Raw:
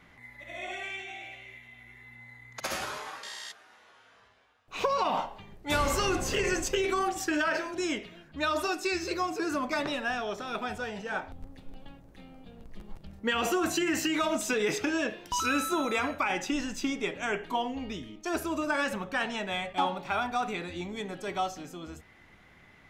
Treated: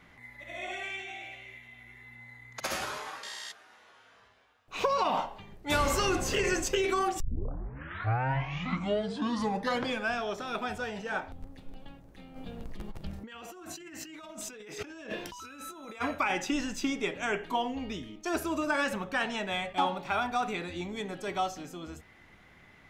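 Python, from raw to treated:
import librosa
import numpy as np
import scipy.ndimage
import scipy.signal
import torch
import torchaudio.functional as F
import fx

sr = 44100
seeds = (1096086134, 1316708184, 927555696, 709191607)

y = fx.over_compress(x, sr, threshold_db=-41.0, ratio=-1.0, at=(12.35, 16.0), fade=0.02)
y = fx.edit(y, sr, fx.tape_start(start_s=7.2, length_s=3.06), tone=tone)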